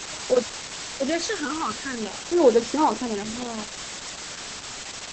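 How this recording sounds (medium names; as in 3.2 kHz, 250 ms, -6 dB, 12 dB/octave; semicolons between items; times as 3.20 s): phasing stages 12, 0.47 Hz, lowest notch 650–3000 Hz; a quantiser's noise floor 6-bit, dither triangular; Opus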